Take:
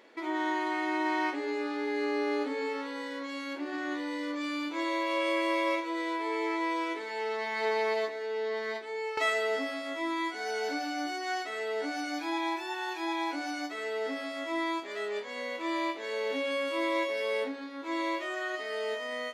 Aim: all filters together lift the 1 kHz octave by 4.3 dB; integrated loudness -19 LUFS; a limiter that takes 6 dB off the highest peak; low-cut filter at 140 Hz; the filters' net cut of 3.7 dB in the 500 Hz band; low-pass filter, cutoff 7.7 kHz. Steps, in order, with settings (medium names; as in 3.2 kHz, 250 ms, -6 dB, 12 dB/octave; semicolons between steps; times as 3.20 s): high-pass 140 Hz; low-pass 7.7 kHz; peaking EQ 500 Hz -6.5 dB; peaking EQ 1 kHz +6.5 dB; trim +13.5 dB; peak limiter -9 dBFS